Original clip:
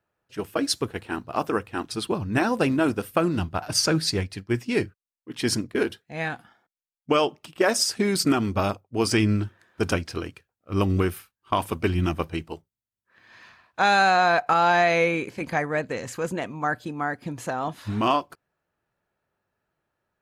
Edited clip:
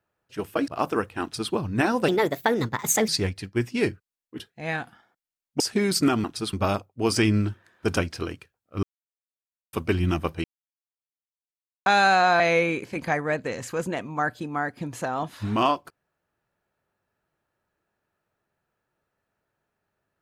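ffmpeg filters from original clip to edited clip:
ffmpeg -i in.wav -filter_complex "[0:a]asplit=13[link_01][link_02][link_03][link_04][link_05][link_06][link_07][link_08][link_09][link_10][link_11][link_12][link_13];[link_01]atrim=end=0.682[link_14];[link_02]atrim=start=1.248:end=2.654[link_15];[link_03]atrim=start=2.65:end=4.02,asetpts=PTS-STARTPTS,asetrate=60417,aresample=44100[link_16];[link_04]atrim=start=4.016:end=5.332[link_17];[link_05]atrim=start=5.908:end=7.122[link_18];[link_06]atrim=start=7.838:end=8.482[link_19];[link_07]atrim=start=1.788:end=2.082[link_20];[link_08]atrim=start=8.478:end=10.78,asetpts=PTS-STARTPTS,afade=type=out:start_time=2.298:duration=0.004:curve=hsin[link_21];[link_09]atrim=start=10.78:end=11.68,asetpts=PTS-STARTPTS,volume=0[link_22];[link_10]atrim=start=11.68:end=12.39,asetpts=PTS-STARTPTS,afade=type=in:duration=0.004:curve=hsin,afade=type=out:start_time=0.706:duration=0.004:curve=hsin[link_23];[link_11]atrim=start=12.39:end=13.81,asetpts=PTS-STARTPTS,volume=0[link_24];[link_12]atrim=start=13.81:end=14.352,asetpts=PTS-STARTPTS,afade=type=in:duration=0.004:curve=hsin[link_25];[link_13]atrim=start=14.848[link_26];[link_14][link_15]acrossfade=duration=0.004:curve1=hsin:curve2=hsin[link_27];[link_27][link_16]acrossfade=duration=0.004:curve1=hsin:curve2=hsin[link_28];[link_28][link_17]acrossfade=duration=0.004:curve1=hsin:curve2=hsin[link_29];[link_29][link_18]acrossfade=duration=0.004:curve1=hsin:curve2=hsin[link_30];[link_30][link_19]acrossfade=duration=0.004:curve1=hsin:curve2=hsin[link_31];[link_31][link_20]acrossfade=duration=0.004:curve1=hsin:curve2=hsin[link_32];[link_21][link_22][link_23][link_24][link_25]concat=n=5:v=0:a=1[link_33];[link_32][link_33]acrossfade=duration=0.004:curve1=hsin:curve2=hsin[link_34];[link_34][link_26]acrossfade=duration=0.004:curve1=hsin:curve2=hsin" out.wav

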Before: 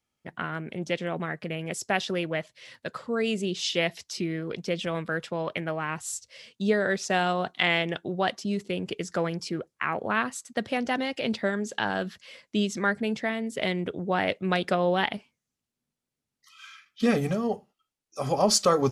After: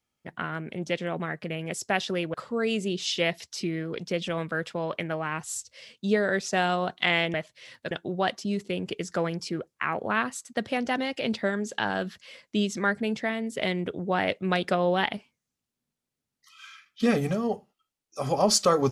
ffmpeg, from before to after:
ffmpeg -i in.wav -filter_complex "[0:a]asplit=4[link_01][link_02][link_03][link_04];[link_01]atrim=end=2.342[link_05];[link_02]atrim=start=2.908:end=7.912[link_06];[link_03]atrim=start=2.338:end=2.912[link_07];[link_04]atrim=start=7.908[link_08];[link_05][link_06]acrossfade=duration=0.004:curve1=hsin:curve2=hsin[link_09];[link_09][link_07]acrossfade=duration=0.004:curve1=hsin:curve2=hsin[link_10];[link_10][link_08]acrossfade=duration=0.004:curve1=hsin:curve2=hsin" out.wav

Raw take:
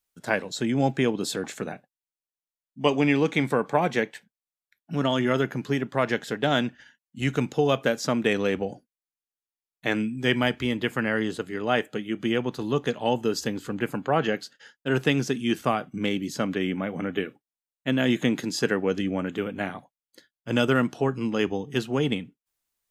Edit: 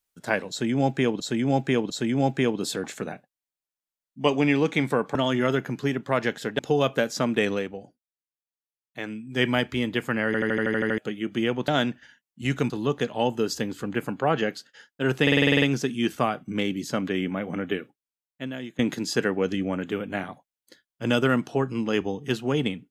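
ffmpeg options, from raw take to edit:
ffmpeg -i in.wav -filter_complex "[0:a]asplit=27[link_01][link_02][link_03][link_04][link_05][link_06][link_07][link_08][link_09][link_10][link_11][link_12][link_13][link_14][link_15][link_16][link_17][link_18][link_19][link_20][link_21][link_22][link_23][link_24][link_25][link_26][link_27];[link_01]atrim=end=1.202[link_28];[link_02]atrim=start=0.498:end=1.202[link_29];[link_03]atrim=start=0.498:end=3.752[link_30];[link_04]atrim=start=5.008:end=6.452[link_31];[link_05]atrim=start=7.468:end=8.56,asetpts=PTS-STARTPTS,afade=type=out:start_time=0.922:duration=0.17:silence=0.375837[link_32];[link_06]atrim=start=8.56:end=10.13,asetpts=PTS-STARTPTS,volume=-8.5dB[link_33];[link_07]atrim=start=10.13:end=11.222,asetpts=PTS-STARTPTS,afade=type=in:duration=0.17:silence=0.375837[link_34];[link_08]atrim=start=11.138:end=11.222[link_35];[link_09]atrim=start=11.138:end=11.222[link_36];[link_10]atrim=start=11.138:end=11.222[link_37];[link_11]atrim=start=11.138:end=11.222[link_38];[link_12]atrim=start=11.138:end=11.222[link_39];[link_13]atrim=start=11.138:end=11.222[link_40];[link_14]atrim=start=11.138:end=11.222[link_41];[link_15]atrim=start=11.138:end=11.222[link_42];[link_16]atrim=start=11.858:end=12.562[link_43];[link_17]atrim=start=6.448:end=7.472[link_44];[link_18]atrim=start=12.558:end=15.132[link_45];[link_19]atrim=start=15.078:end=15.132[link_46];[link_20]atrim=start=15.078:end=15.132[link_47];[link_21]atrim=start=15.078:end=15.132[link_48];[link_22]atrim=start=15.078:end=15.132[link_49];[link_23]atrim=start=15.078:end=15.132[link_50];[link_24]atrim=start=15.078:end=15.132[link_51];[link_25]atrim=start=15.078:end=15.132[link_52];[link_26]atrim=start=15.078:end=18.25,asetpts=PTS-STARTPTS,afade=type=out:start_time=2.112:duration=1.06:silence=0.0707946[link_53];[link_27]atrim=start=18.25,asetpts=PTS-STARTPTS,afade=type=in:duration=0.004:curve=hsin:silence=0.0707946[link_54];[link_28][link_29]acrossfade=duration=0.004:curve1=hsin:curve2=hsin[link_55];[link_55][link_30]acrossfade=duration=0.004:curve1=hsin:curve2=hsin[link_56];[link_56][link_31]acrossfade=duration=0.004:curve1=hsin:curve2=hsin[link_57];[link_32][link_33][link_34]concat=n=3:v=0:a=1[link_58];[link_57][link_58]acrossfade=duration=0.004:curve1=hsin:curve2=hsin[link_59];[link_59][link_35]acrossfade=duration=0.004:curve1=hsin:curve2=hsin[link_60];[link_60][link_36]acrossfade=duration=0.004:curve1=hsin:curve2=hsin[link_61];[link_61][link_37]acrossfade=duration=0.004:curve1=hsin:curve2=hsin[link_62];[link_62][link_38]acrossfade=duration=0.004:curve1=hsin:curve2=hsin[link_63];[link_63][link_39]acrossfade=duration=0.004:curve1=hsin:curve2=hsin[link_64];[link_64][link_40]acrossfade=duration=0.004:curve1=hsin:curve2=hsin[link_65];[link_65][link_41]acrossfade=duration=0.004:curve1=hsin:curve2=hsin[link_66];[link_66][link_42]acrossfade=duration=0.004:curve1=hsin:curve2=hsin[link_67];[link_67][link_43]acrossfade=duration=0.004:curve1=hsin:curve2=hsin[link_68];[link_68][link_44]acrossfade=duration=0.004:curve1=hsin:curve2=hsin[link_69];[link_69][link_45]acrossfade=duration=0.004:curve1=hsin:curve2=hsin[link_70];[link_70][link_46]acrossfade=duration=0.004:curve1=hsin:curve2=hsin[link_71];[link_71][link_47]acrossfade=duration=0.004:curve1=hsin:curve2=hsin[link_72];[link_72][link_48]acrossfade=duration=0.004:curve1=hsin:curve2=hsin[link_73];[link_73][link_49]acrossfade=duration=0.004:curve1=hsin:curve2=hsin[link_74];[link_74][link_50]acrossfade=duration=0.004:curve1=hsin:curve2=hsin[link_75];[link_75][link_51]acrossfade=duration=0.004:curve1=hsin:curve2=hsin[link_76];[link_76][link_52]acrossfade=duration=0.004:curve1=hsin:curve2=hsin[link_77];[link_53][link_54]concat=n=2:v=0:a=1[link_78];[link_77][link_78]acrossfade=duration=0.004:curve1=hsin:curve2=hsin" out.wav

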